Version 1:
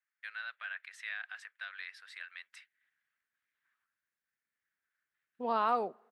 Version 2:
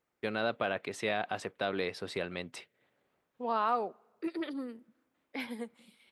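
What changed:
first voice: remove ladder high-pass 1500 Hz, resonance 65%; second voice: entry -2.00 s

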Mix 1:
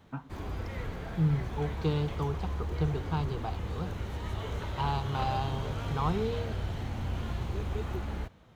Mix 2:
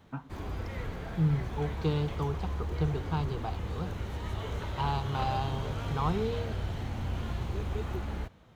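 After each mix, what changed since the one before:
none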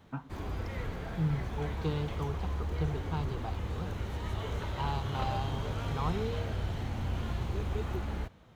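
second voice -4.0 dB

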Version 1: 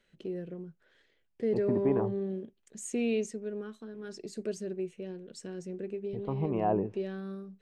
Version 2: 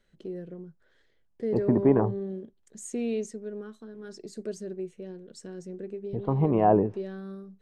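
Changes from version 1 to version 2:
second voice +8.0 dB; master: add bell 2600 Hz -7 dB 0.57 oct

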